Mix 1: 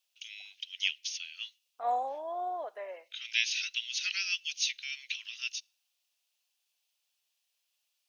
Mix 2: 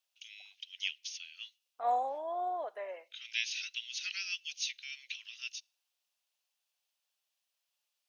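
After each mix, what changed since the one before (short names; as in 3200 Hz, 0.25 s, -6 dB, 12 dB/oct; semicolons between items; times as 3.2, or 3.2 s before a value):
first voice -5.5 dB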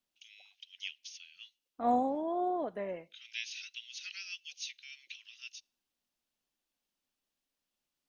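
first voice -5.5 dB; second voice: remove HPF 570 Hz 24 dB/oct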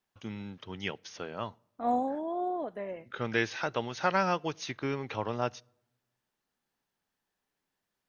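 first voice: remove elliptic high-pass 2600 Hz, stop band 70 dB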